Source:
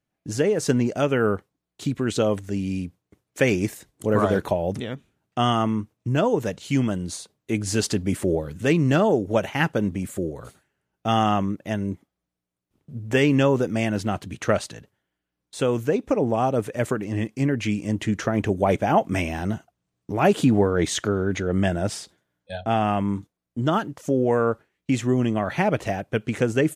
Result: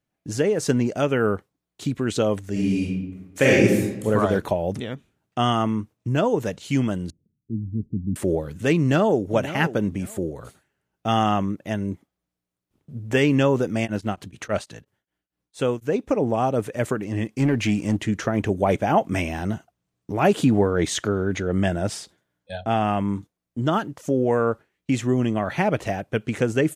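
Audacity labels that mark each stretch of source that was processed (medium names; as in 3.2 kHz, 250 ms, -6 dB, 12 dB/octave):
2.510000	4.050000	reverb throw, RT60 1 s, DRR -5 dB
7.100000	8.160000	inverse Chebyshev low-pass stop band from 1.1 kHz, stop band 70 dB
8.780000	9.250000	echo throw 540 ms, feedback 20%, level -13 dB
13.840000	16.060000	tremolo of two beating tones nulls at 7.6 Hz -> 3.1 Hz
17.370000	17.970000	waveshaping leveller passes 1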